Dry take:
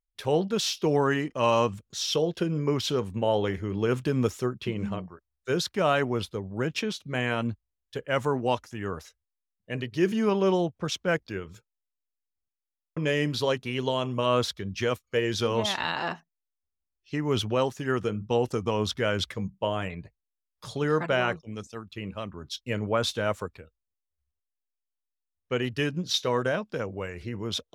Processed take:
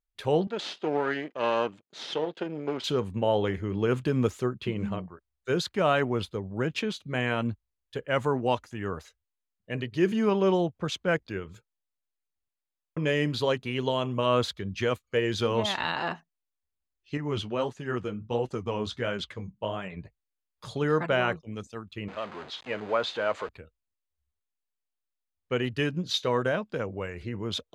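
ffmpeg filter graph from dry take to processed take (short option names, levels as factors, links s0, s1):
-filter_complex "[0:a]asettb=1/sr,asplit=3[s0][s1][s2];[s0]atrim=end=0.474[s3];[s1]atrim=start=0.47:end=2.84,asetpts=PTS-STARTPTS,afade=t=in:d=0.004:c=qsin,afade=t=out:st=2.366:d=0.004:c=qsin,aeval=exprs='if(lt(val(0),0),0.251*val(0),val(0))':c=same,highpass=280,lowpass=4500,bandreject=f=1100:w=13[s4];[s2]atrim=start=2.836[s5];[s3][s4]acrossfade=d=0.004:c1=hsin:c2=qsin[s6];[s6][s5]acrossfade=d=0.004:c1=qsin:c2=hsin,asettb=1/sr,asplit=3[s7][s8][s9];[s7]atrim=end=17.174[s10];[s8]atrim=start=17.17:end=19.97,asetpts=PTS-STARTPTS,afade=t=in:d=0.004:c=qsin,afade=t=out:st=2.796:d=0.004:c=qsin,lowpass=9400,flanger=delay=4.9:depth=8.8:regen=-41:speed=1.5:shape=sinusoidal[s11];[s9]atrim=start=19.966[s12];[s10][s11]acrossfade=d=0.004:c1=hsin:c2=qsin[s13];[s13][s12]acrossfade=d=0.004:c1=qsin:c2=hsin,asettb=1/sr,asplit=3[s14][s15][s16];[s14]atrim=end=22.084[s17];[s15]atrim=start=22.08:end=23.49,asetpts=PTS-STARTPTS,afade=t=in:d=0.004:c=qsin,afade=t=out:st=1.406:d=0.004:c=qsin,aeval=exprs='val(0)+0.5*0.0237*sgn(val(0))':c=same,highpass=540,lowpass=6200,aemphasis=mode=reproduction:type=bsi[s18];[s16]atrim=start=23.486[s19];[s17][s18]acrossfade=d=0.004:c1=hsin:c2=qsin[s20];[s20][s19]acrossfade=d=0.004:c1=qsin:c2=hsin,highshelf=f=8900:g=-9.5,bandreject=f=5500:w=7.1"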